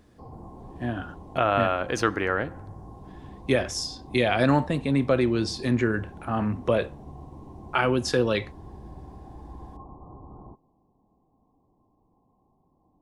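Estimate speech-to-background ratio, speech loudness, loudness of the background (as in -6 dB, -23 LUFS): 19.5 dB, -25.5 LUFS, -45.0 LUFS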